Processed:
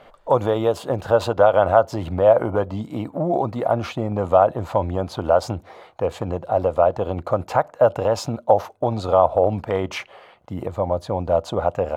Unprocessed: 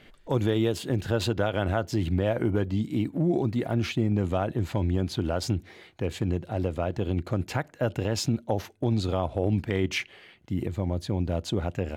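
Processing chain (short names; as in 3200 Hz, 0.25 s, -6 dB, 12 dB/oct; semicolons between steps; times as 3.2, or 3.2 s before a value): band shelf 800 Hz +16 dB; gain -1 dB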